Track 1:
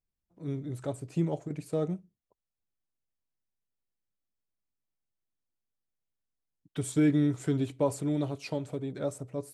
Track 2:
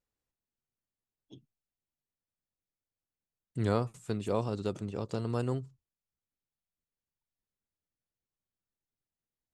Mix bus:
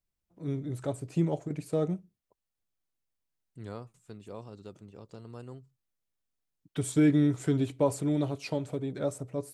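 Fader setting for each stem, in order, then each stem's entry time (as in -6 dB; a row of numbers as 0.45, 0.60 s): +1.5, -12.5 dB; 0.00, 0.00 s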